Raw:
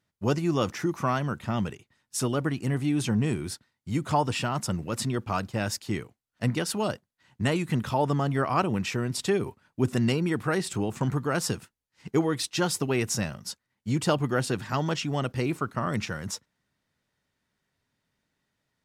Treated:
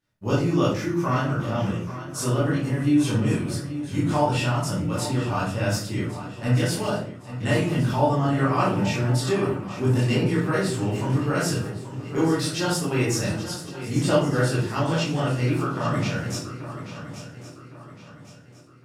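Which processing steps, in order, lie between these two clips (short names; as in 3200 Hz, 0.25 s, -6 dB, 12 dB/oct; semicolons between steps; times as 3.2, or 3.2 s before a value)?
swung echo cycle 1.111 s, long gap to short 3:1, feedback 38%, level -12.5 dB; reverb RT60 0.50 s, pre-delay 16 ms, DRR -8.5 dB; gain -6 dB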